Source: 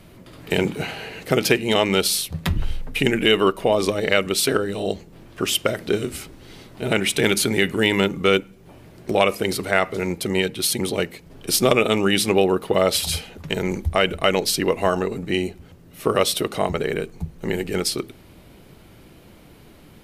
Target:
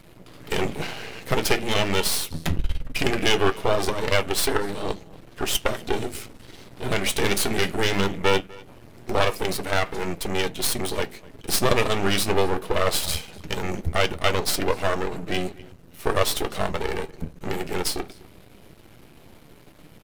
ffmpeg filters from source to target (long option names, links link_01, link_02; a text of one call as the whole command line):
ffmpeg -i in.wav -filter_complex "[0:a]asplit=2[link_01][link_02];[link_02]adelay=250.7,volume=-22dB,highshelf=frequency=4000:gain=-5.64[link_03];[link_01][link_03]amix=inputs=2:normalize=0,aeval=exprs='max(val(0),0)':channel_layout=same,flanger=delay=6:depth=6.2:regen=-63:speed=0.2:shape=triangular,volume=6dB" out.wav